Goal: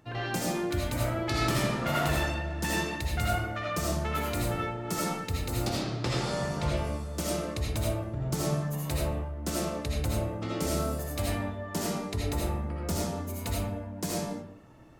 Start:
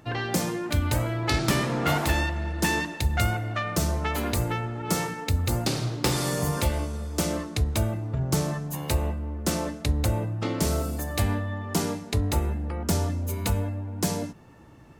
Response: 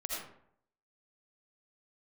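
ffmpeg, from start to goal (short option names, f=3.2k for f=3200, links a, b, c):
-filter_complex "[0:a]asettb=1/sr,asplit=3[a][b][c];[a]atrim=end=5.694[d];[b]atrim=start=5.69:end=6.77,asetpts=PTS-STARTPTS,afade=t=in:d=0.004:c=qsin,afade=t=out:st=1.076:d=0.004:c=qsin,lowpass=5.4k[e];[c]atrim=start=6.766[f];[d][e]acrossfade=d=0.004:c1=hsin:c2=qsin[g];[g][f]acrossfade=d=0.004:c1=qsin:c2=hsin[h];[1:a]atrim=start_sample=2205[i];[h][i]afir=irnorm=-1:irlink=0,volume=-5dB"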